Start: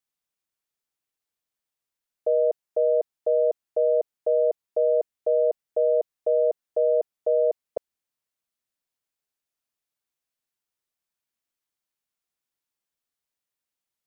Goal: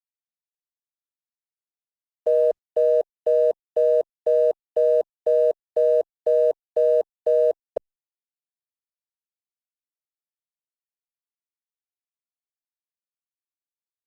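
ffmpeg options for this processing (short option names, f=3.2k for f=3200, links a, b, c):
-af "aeval=exprs='sgn(val(0))*max(abs(val(0))-0.00266,0)':c=same,volume=3dB" -ar 48000 -c:a libopus -b:a 24k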